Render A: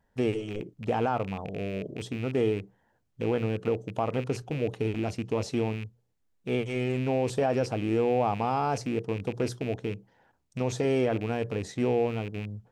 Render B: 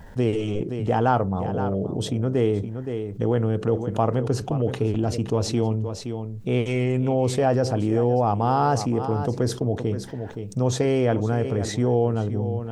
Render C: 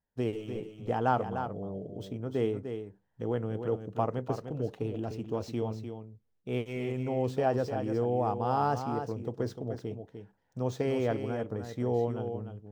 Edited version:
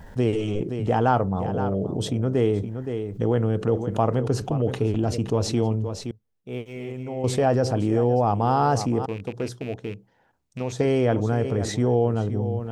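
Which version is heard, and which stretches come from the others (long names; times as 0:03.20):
B
0:06.11–0:07.24: punch in from C
0:09.06–0:10.79: punch in from A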